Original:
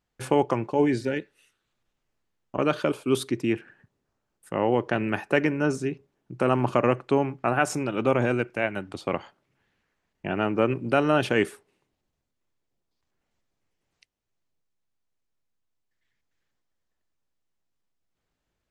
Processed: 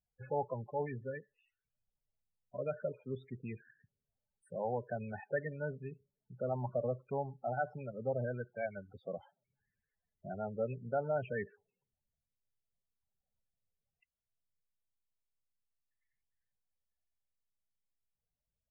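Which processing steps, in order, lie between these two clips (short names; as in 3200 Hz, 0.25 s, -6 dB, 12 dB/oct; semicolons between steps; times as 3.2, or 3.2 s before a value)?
treble ducked by the level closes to 2500 Hz, closed at -23 dBFS; loudest bins only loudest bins 16; fixed phaser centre 1200 Hz, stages 6; gain -8.5 dB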